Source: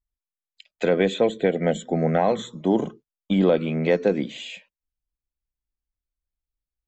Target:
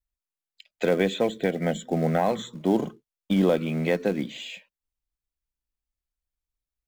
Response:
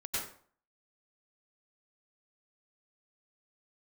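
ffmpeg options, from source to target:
-filter_complex "[0:a]adynamicequalizer=threshold=0.0251:dfrequency=460:dqfactor=1.6:tfrequency=460:tqfactor=1.6:attack=5:release=100:ratio=0.375:range=3:mode=cutabove:tftype=bell,asplit=2[a][b];[b]acrusher=bits=3:mode=log:mix=0:aa=0.000001,volume=-9.5dB[c];[a][c]amix=inputs=2:normalize=0,volume=-4dB"

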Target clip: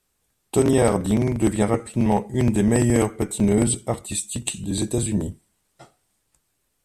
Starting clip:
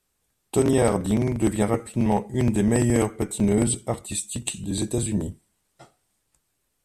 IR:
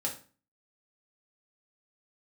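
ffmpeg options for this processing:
-filter_complex "[0:a]asettb=1/sr,asplit=3[a][b][c];[a]atrim=end=1.524[d];[b]atrim=start=1.52:end=1.92,asetpts=PTS-STARTPTS,afade=t=in:d=0.004:c=qsin,afade=t=out:st=0.396:d=0.004:c=qsin,lowpass=f=11k:w=0.5412,lowpass=f=11k:w=1.3066[e];[c]atrim=start=1.916[f];[d][e]acrossfade=d=0.004:c1=hsin:c2=qsin[g];[g][f]acrossfade=d=0.004:c1=qsin:c2=hsin,volume=2dB"

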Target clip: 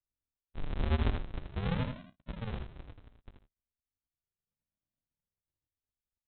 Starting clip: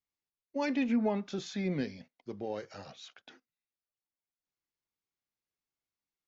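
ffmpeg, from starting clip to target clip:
-af "aresample=8000,acrusher=samples=36:mix=1:aa=0.000001:lfo=1:lforange=36:lforate=0.36,aresample=44100,aecho=1:1:81:0.473"

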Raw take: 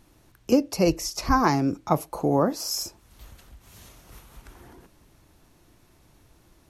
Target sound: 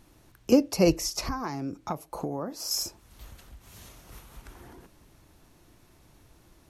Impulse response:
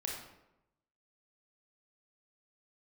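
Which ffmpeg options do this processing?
-filter_complex "[0:a]asettb=1/sr,asplit=3[a][b][c];[a]atrim=end=1.264[d];[b]atrim=start=1.26:end=2.71,asetpts=PTS-STARTPTS,afade=t=in:d=0.004:c=qsin,afade=t=out:st=1.446:d=0.004:c=qsin,acompressor=threshold=-30dB:ratio=6[e];[c]atrim=start=2.706[f];[d][e]acrossfade=d=0.004:c1=hsin:c2=qsin[g];[g][f]acrossfade=d=0.004:c1=qsin:c2=hsin"

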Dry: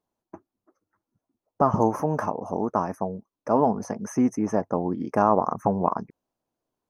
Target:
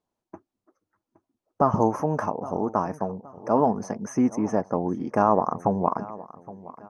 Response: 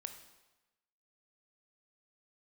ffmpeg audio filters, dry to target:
-filter_complex "[0:a]lowpass=9.1k,asplit=2[a][b];[b]adelay=818,lowpass=f=4.1k:p=1,volume=-18dB,asplit=2[c][d];[d]adelay=818,lowpass=f=4.1k:p=1,volume=0.4,asplit=2[e][f];[f]adelay=818,lowpass=f=4.1k:p=1,volume=0.4[g];[c][e][g]amix=inputs=3:normalize=0[h];[a][h]amix=inputs=2:normalize=0"

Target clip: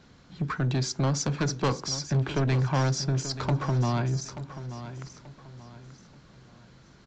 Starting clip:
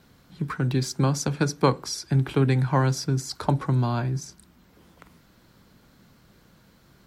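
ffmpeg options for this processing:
-af "aresample=16000,asoftclip=type=tanh:threshold=-22.5dB,aresample=44100,aecho=1:1:883|1766|2649:0.237|0.0806|0.0274,volume=1.5dB"

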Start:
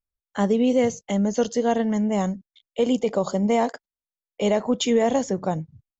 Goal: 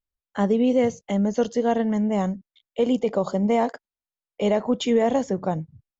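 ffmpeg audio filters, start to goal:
-af "aemphasis=mode=reproduction:type=50kf"

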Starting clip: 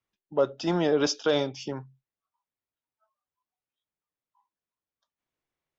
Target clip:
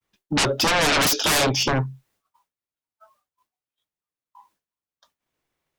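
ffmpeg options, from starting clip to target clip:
-af "aeval=exprs='0.237*sin(PI/2*10*val(0)/0.237)':c=same,agate=range=-33dB:threshold=-56dB:ratio=3:detection=peak,volume=-3.5dB"

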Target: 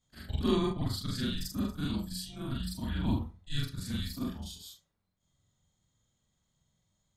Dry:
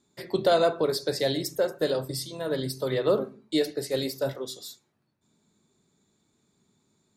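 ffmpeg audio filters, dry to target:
-af "afftfilt=real='re':imag='-im':win_size=4096:overlap=0.75,afreqshift=-310,volume=-2dB"

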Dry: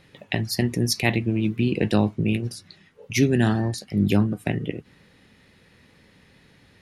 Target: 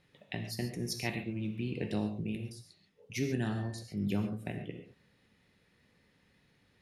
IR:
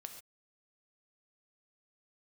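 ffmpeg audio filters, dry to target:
-filter_complex "[0:a]asettb=1/sr,asplit=3[a][b][c];[a]atrim=end=1.934[d];[b]atrim=start=1.93:end=3.12,asetpts=PTS-STARTPTS,afade=t=in:d=0.004:c=qsin,afade=t=out:st=1.186:d=0.004:c=qsin,equalizer=f=1.5k:t=o:w=1.3:g=-6.5[e];[c]atrim=start=3.116[f];[d][e]acrossfade=d=0.004:c1=hsin:c2=qsin[g];[g][f]acrossfade=d=0.004:c1=qsin:c2=hsin[h];[1:a]atrim=start_sample=2205[i];[h][i]afir=irnorm=-1:irlink=0,volume=-8.5dB"

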